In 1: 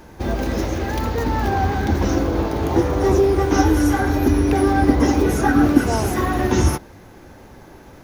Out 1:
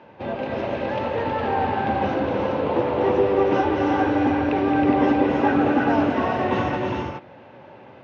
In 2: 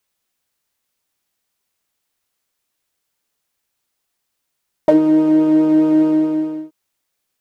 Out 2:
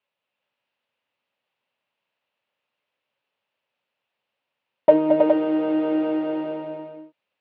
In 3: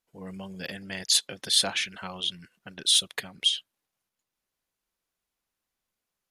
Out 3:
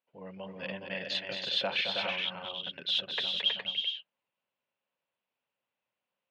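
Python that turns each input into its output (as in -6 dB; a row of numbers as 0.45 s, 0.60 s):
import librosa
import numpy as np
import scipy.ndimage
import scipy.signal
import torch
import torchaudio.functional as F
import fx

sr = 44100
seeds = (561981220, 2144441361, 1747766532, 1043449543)

p1 = fx.cabinet(x, sr, low_hz=110.0, low_slope=24, high_hz=3500.0, hz=(170.0, 330.0, 560.0, 920.0, 2700.0), db=(-3, -4, 9, 5, 7))
p2 = p1 + fx.echo_multitap(p1, sr, ms=(220, 319, 414), db=(-7.0, -4.5, -5.0), dry=0)
y = F.gain(torch.from_numpy(p2), -5.5).numpy()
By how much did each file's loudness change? -3.0 LU, -6.5 LU, -6.5 LU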